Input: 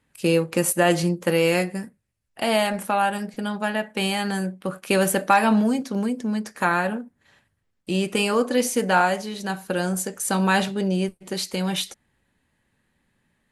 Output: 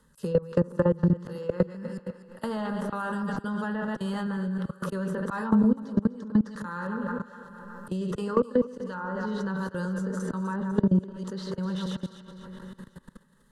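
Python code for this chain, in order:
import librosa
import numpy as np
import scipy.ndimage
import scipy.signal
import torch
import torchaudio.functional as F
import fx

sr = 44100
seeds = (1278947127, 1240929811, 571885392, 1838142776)

y = fx.reverse_delay(x, sr, ms=104, wet_db=-8)
y = fx.fixed_phaser(y, sr, hz=470.0, stages=8)
y = fx.dynamic_eq(y, sr, hz=580.0, q=5.4, threshold_db=-37.0, ratio=4.0, max_db=-4)
y = fx.notch(y, sr, hz=780.0, q=12.0)
y = fx.echo_wet_lowpass(y, sr, ms=154, feedback_pct=59, hz=2500.0, wet_db=-19.0)
y = fx.auto_swell(y, sr, attack_ms=341.0)
y = fx.env_lowpass_down(y, sr, base_hz=770.0, full_db=-19.0)
y = fx.level_steps(y, sr, step_db=23)
y = fx.low_shelf(y, sr, hz=94.0, db=8.0)
y = fx.echo_thinned(y, sr, ms=249, feedback_pct=29, hz=500.0, wet_db=-15)
y = fx.band_squash(y, sr, depth_pct=70)
y = F.gain(torch.from_numpy(y), 6.0).numpy()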